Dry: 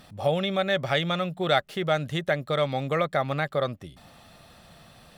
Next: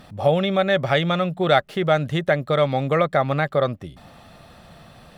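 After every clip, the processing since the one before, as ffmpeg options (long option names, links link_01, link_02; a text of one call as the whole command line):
ffmpeg -i in.wav -af "highshelf=frequency=2800:gain=-7.5,volume=6.5dB" out.wav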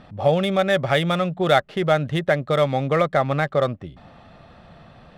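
ffmpeg -i in.wav -af "adynamicsmooth=sensitivity=5:basefreq=3600" out.wav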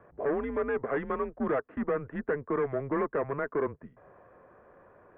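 ffmpeg -i in.wav -af "asoftclip=type=hard:threshold=-18dB,highpass=frequency=290:width_type=q:width=0.5412,highpass=frequency=290:width_type=q:width=1.307,lowpass=frequency=2000:width_type=q:width=0.5176,lowpass=frequency=2000:width_type=q:width=0.7071,lowpass=frequency=2000:width_type=q:width=1.932,afreqshift=-140,volume=-6dB" out.wav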